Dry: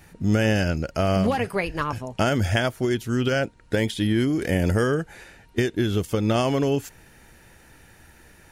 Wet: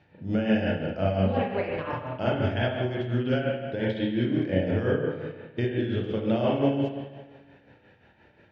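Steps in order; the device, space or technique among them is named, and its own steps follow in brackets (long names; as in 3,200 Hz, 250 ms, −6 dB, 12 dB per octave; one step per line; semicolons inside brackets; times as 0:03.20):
combo amplifier with spring reverb and tremolo (spring reverb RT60 1.4 s, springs 32/42/50 ms, chirp 40 ms, DRR −4 dB; amplitude tremolo 5.7 Hz, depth 54%; loudspeaker in its box 110–3,700 Hz, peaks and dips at 110 Hz +5 dB, 580 Hz +5 dB, 1,200 Hz −7 dB, 2,000 Hz −4 dB)
level −7 dB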